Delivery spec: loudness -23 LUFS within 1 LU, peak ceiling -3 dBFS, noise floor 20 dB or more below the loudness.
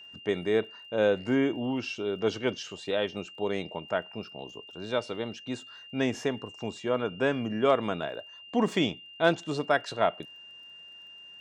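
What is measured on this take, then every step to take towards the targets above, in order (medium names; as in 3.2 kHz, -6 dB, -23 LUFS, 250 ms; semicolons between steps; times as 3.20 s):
tick rate 25 per s; steady tone 2.8 kHz; tone level -46 dBFS; loudness -30.0 LUFS; peak level -7.5 dBFS; loudness target -23.0 LUFS
-> de-click; band-stop 2.8 kHz, Q 30; trim +7 dB; peak limiter -3 dBFS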